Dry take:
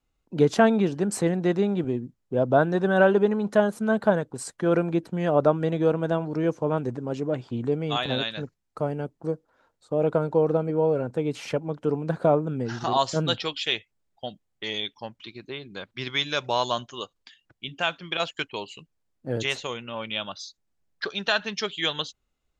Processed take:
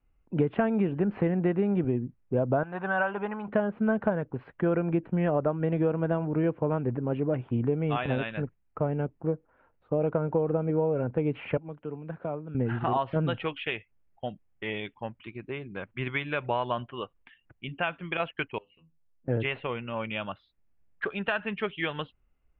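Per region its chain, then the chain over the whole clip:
0:02.63–0:03.48: low shelf with overshoot 600 Hz −11.5 dB, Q 1.5 + notch filter 1,800 Hz, Q 20
0:11.57–0:12.55: first-order pre-emphasis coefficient 0.8 + multiband upward and downward compressor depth 40%
0:18.58–0:19.28: downward compressor 2.5 to 1, threshold −54 dBFS + mains-hum notches 50/100/150/200/250/300/350 Hz + stiff-string resonator 81 Hz, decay 0.23 s, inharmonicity 0.002
whole clip: downward compressor, threshold −23 dBFS; Butterworth low-pass 2,800 Hz 48 dB per octave; low-shelf EQ 110 Hz +9.5 dB

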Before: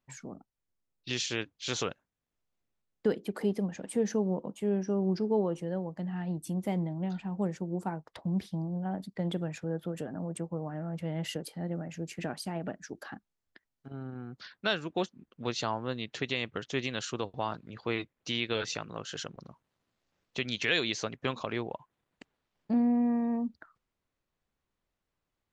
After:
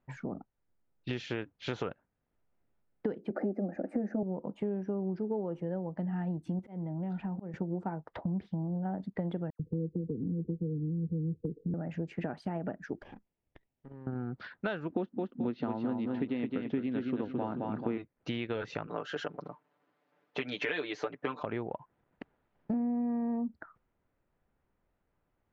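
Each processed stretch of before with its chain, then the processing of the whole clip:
0:03.30–0:04.23: parametric band 450 Hz +14.5 dB 2.1 octaves + phaser with its sweep stopped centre 660 Hz, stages 8
0:06.59–0:07.54: volume swells 540 ms + downward compressor 2.5 to 1, threshold −40 dBFS
0:09.50–0:11.74: linear-phase brick-wall band-stop 500–9,800 Hz + low-shelf EQ 160 Hz +8 dB + all-pass dispersion lows, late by 95 ms, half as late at 2,300 Hz
0:13.02–0:14.07: lower of the sound and its delayed copy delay 0.36 ms + downward compressor 2.5 to 1, threshold −59 dBFS
0:14.91–0:17.98: low-pass filter 4,600 Hz 24 dB per octave + parametric band 260 Hz +14.5 dB 0.88 octaves + repeating echo 217 ms, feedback 34%, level −5 dB
0:18.87–0:21.43: high-pass filter 290 Hz + high-shelf EQ 8,400 Hz +4.5 dB + comb filter 6.8 ms, depth 93%
whole clip: low-pass filter 1,600 Hz 12 dB per octave; notch filter 1,100 Hz, Q 12; downward compressor 5 to 1, threshold −40 dBFS; level +8 dB

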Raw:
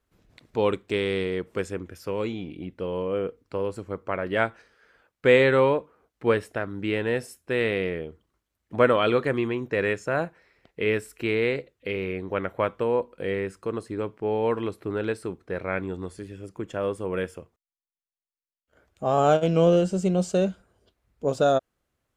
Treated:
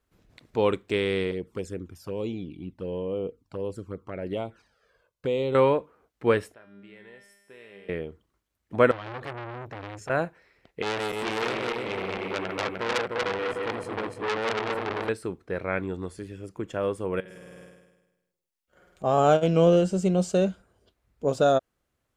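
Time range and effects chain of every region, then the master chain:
0:01.31–0:05.55: parametric band 1,900 Hz −7.5 dB 0.99 octaves + downward compressor 2.5 to 1, threshold −25 dBFS + flanger swept by the level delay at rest 2 ms, full sweep at −25.5 dBFS
0:06.54–0:07.89: downward compressor 2 to 1, threshold −29 dBFS + low-shelf EQ 170 Hz −9.5 dB + tuned comb filter 200 Hz, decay 1.3 s, mix 90%
0:08.91–0:10.10: low shelf with overshoot 140 Hz +6 dB, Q 3 + downward compressor 4 to 1, threshold −26 dBFS + saturating transformer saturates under 2,700 Hz
0:10.82–0:15.09: feedback delay that plays each chunk backwards 151 ms, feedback 66%, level −1.5 dB + saturating transformer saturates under 3,700 Hz
0:17.20–0:19.04: comb filter 5.5 ms, depth 54% + flutter between parallel walls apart 8.7 metres, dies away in 1.1 s + downward compressor 16 to 1, threshold −41 dBFS
whole clip: no processing

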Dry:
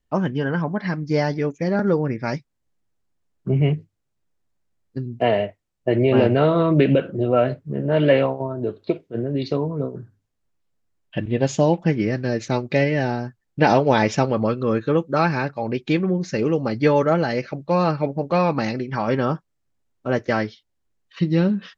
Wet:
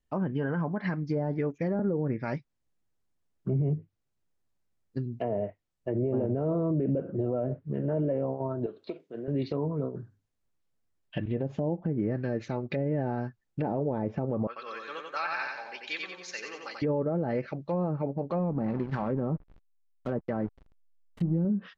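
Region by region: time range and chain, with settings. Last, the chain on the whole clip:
0:08.66–0:09.28: high-pass filter 210 Hz + downward compressor 2 to 1, threshold −34 dBFS
0:14.47–0:16.82: high-pass filter 1,400 Hz + repeating echo 90 ms, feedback 47%, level −3.5 dB
0:18.39–0:21.45: parametric band 180 Hz +5 dB 0.68 octaves + echo with shifted repeats 285 ms, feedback 43%, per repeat +34 Hz, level −22.5 dB + slack as between gear wheels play −27 dBFS
whole clip: treble cut that deepens with the level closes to 580 Hz, closed at −15 dBFS; brickwall limiter −16 dBFS; level −4.5 dB

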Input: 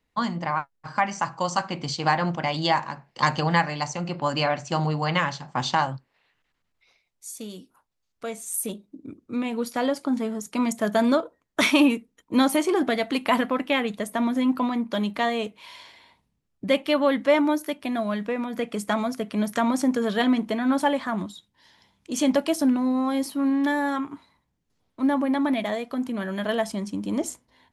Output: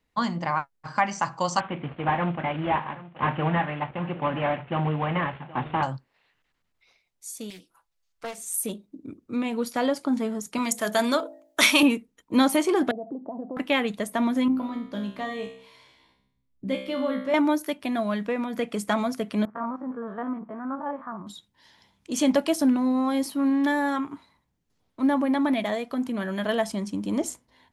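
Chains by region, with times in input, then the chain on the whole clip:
0:01.60–0:05.83: variable-slope delta modulation 16 kbit/s + high-pass filter 59 Hz + single-tap delay 774 ms −18 dB
0:07.50–0:08.38: parametric band 220 Hz −10.5 dB 2.2 octaves + comb filter 6 ms, depth 59% + highs frequency-modulated by the lows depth 0.32 ms
0:10.58–0:11.83: spectral tilt +2.5 dB per octave + hum removal 54.36 Hz, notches 16
0:12.91–0:13.57: downward compressor 4 to 1, threshold −30 dBFS + elliptic band-pass filter 140–750 Hz, stop band 50 dB
0:14.48–0:17.34: low-shelf EQ 450 Hz +10 dB + tuned comb filter 65 Hz, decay 0.65 s, mix 90%
0:19.45–0:21.27: spectrum averaged block by block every 50 ms + transistor ladder low-pass 1,400 Hz, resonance 55%
whole clip: no processing

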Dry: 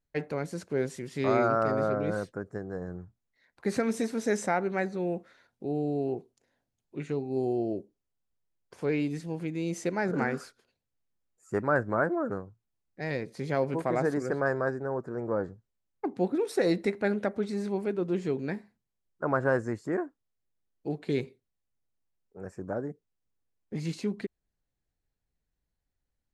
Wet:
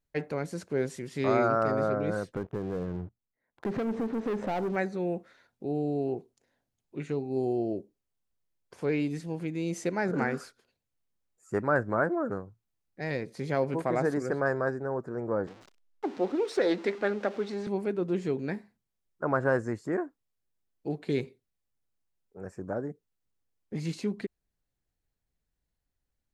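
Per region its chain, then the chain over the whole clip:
0:02.34–0:04.76: low-pass filter 1,100 Hz + leveller curve on the samples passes 3 + downward compressor 3 to 1, threshold −31 dBFS
0:15.47–0:17.67: converter with a step at zero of −40.5 dBFS + three-way crossover with the lows and the highs turned down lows −20 dB, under 220 Hz, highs −20 dB, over 6,800 Hz + highs frequency-modulated by the lows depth 0.11 ms
whole clip: no processing

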